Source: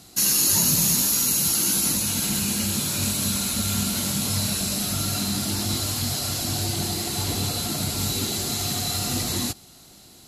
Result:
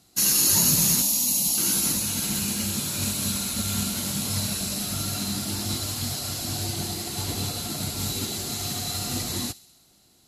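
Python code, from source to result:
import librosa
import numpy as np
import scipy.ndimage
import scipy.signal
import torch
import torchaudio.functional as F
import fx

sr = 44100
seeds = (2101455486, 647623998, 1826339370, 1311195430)

y = fx.fixed_phaser(x, sr, hz=400.0, stages=6, at=(1.02, 1.58))
y = fx.echo_wet_highpass(y, sr, ms=66, feedback_pct=69, hz=2900.0, wet_db=-12.5)
y = fx.upward_expand(y, sr, threshold_db=-41.0, expansion=1.5)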